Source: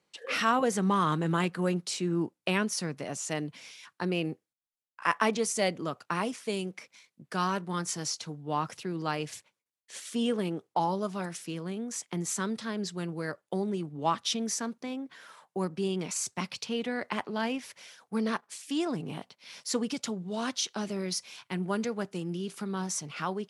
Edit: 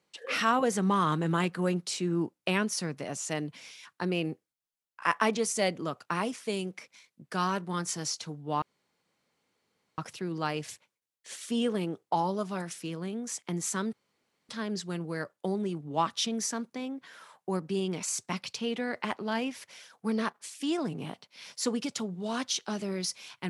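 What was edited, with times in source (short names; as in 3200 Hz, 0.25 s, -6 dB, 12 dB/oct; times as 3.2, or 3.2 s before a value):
8.62 insert room tone 1.36 s
12.57 insert room tone 0.56 s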